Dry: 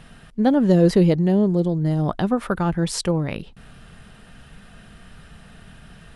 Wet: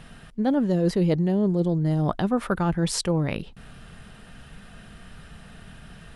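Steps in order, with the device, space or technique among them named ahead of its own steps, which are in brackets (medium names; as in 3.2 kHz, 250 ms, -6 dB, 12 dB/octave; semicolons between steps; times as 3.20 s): compression on the reversed sound (reverse; compression 10:1, threshold -18 dBFS, peak gain reduction 8.5 dB; reverse)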